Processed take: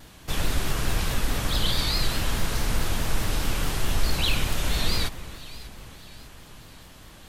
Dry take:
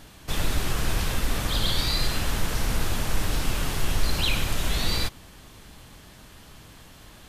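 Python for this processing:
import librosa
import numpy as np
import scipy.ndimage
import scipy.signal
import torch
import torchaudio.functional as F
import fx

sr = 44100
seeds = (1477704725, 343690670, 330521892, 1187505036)

y = fx.echo_alternate(x, sr, ms=299, hz=2100.0, feedback_pct=69, wet_db=-13.5)
y = fx.vibrato(y, sr, rate_hz=4.7, depth_cents=91.0)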